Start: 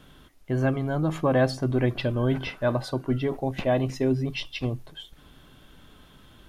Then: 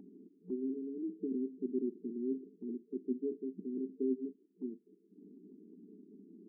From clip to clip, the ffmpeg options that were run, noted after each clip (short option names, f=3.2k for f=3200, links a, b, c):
-af "afftfilt=real='re*between(b*sr/4096,180,450)':imag='im*between(b*sr/4096,180,450)':win_size=4096:overlap=0.75,acompressor=mode=upward:threshold=-34dB:ratio=2.5,volume=-9dB"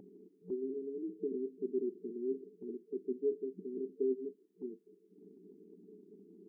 -af "equalizer=f=125:t=o:w=1:g=10,equalizer=f=250:t=o:w=1:g=-12,equalizer=f=500:t=o:w=1:g=10,volume=1dB"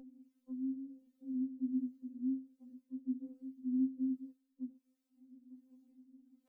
-filter_complex "[0:a]flanger=delay=3.7:depth=2.2:regen=55:speed=0.53:shape=triangular,acrossover=split=420[a][b];[a]aeval=exprs='val(0)*(1-0.7/2+0.7/2*cos(2*PI*1.3*n/s))':c=same[c];[b]aeval=exprs='val(0)*(1-0.7/2-0.7/2*cos(2*PI*1.3*n/s))':c=same[d];[c][d]amix=inputs=2:normalize=0,afftfilt=real='re*3.46*eq(mod(b,12),0)':imag='im*3.46*eq(mod(b,12),0)':win_size=2048:overlap=0.75,volume=8dB"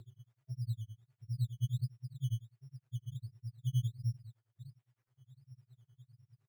-af "afreqshift=-380,tremolo=f=9.8:d=1,acrusher=samples=11:mix=1:aa=0.000001:lfo=1:lforange=6.6:lforate=1.4,volume=5dB"